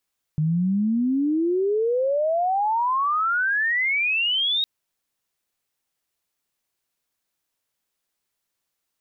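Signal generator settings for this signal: sweep logarithmic 150 Hz -> 3.8 kHz -18.5 dBFS -> -19.5 dBFS 4.26 s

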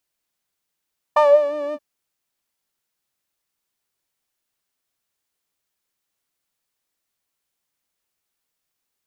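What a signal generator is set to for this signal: synth patch with vibrato D5, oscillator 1 saw, interval +7 st, oscillator 2 level -14.5 dB, sub -28.5 dB, noise -26.5 dB, filter bandpass, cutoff 170 Hz, Q 6.1, filter envelope 2.5 oct, filter decay 0.36 s, attack 9.3 ms, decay 0.16 s, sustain -7 dB, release 0.05 s, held 0.58 s, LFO 5.7 Hz, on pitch 46 cents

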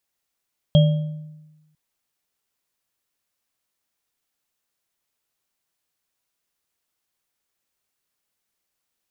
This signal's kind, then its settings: sine partials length 1.00 s, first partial 154 Hz, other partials 587/3250 Hz, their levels -8/-13.5 dB, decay 1.13 s, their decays 0.70/0.46 s, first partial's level -9 dB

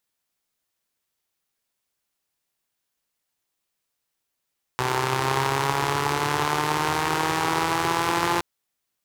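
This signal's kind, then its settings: four-cylinder engine model, changing speed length 3.62 s, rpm 3800, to 5200, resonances 130/380/880 Hz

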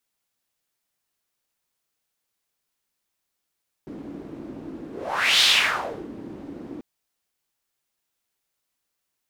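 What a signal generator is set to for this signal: whoosh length 2.94 s, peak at 1.56 s, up 0.57 s, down 0.70 s, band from 290 Hz, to 3.6 kHz, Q 3.2, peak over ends 21 dB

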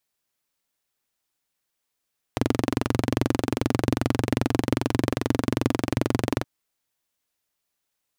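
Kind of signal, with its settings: single-cylinder engine model, steady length 4.07 s, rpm 2700, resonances 120/260 Hz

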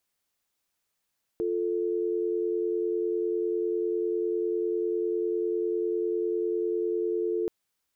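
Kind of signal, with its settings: call progress tone dial tone, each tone -28 dBFS 6.08 s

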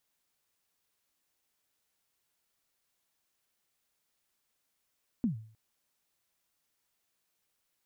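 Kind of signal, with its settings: kick drum length 0.31 s, from 260 Hz, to 110 Hz, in 117 ms, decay 0.49 s, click off, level -23 dB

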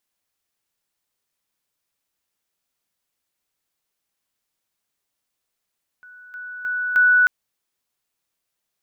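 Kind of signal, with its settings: level ladder 1.48 kHz -41.5 dBFS, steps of 10 dB, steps 4, 0.31 s 0.00 s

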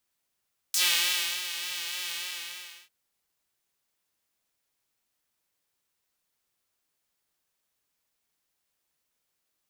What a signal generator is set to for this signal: synth patch with vibrato F4, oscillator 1 triangle, interval -12 st, detune 25 cents, oscillator 2 level -2.5 dB, sub -0.5 dB, noise -14.5 dB, filter highpass, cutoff 2.7 kHz, Q 1.6, filter envelope 1.5 oct, filter decay 0.08 s, filter sustain 10%, attack 2.5 ms, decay 0.67 s, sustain -12 dB, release 0.74 s, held 1.41 s, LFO 3.4 Hz, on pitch 50 cents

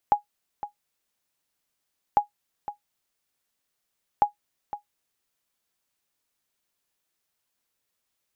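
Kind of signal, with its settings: sonar ping 827 Hz, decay 0.12 s, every 2.05 s, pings 3, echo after 0.51 s, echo -14 dB -9.5 dBFS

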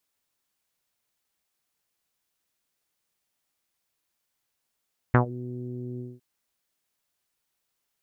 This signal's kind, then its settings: synth note saw B2 24 dB/octave, low-pass 350 Hz, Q 2.7, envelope 2.5 oct, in 0.16 s, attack 2.8 ms, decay 0.11 s, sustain -21 dB, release 0.21 s, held 0.85 s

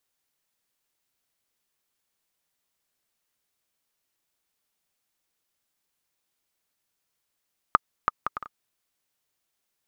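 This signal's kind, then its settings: bouncing ball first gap 0.33 s, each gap 0.56, 1.23 kHz, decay 23 ms -3 dBFS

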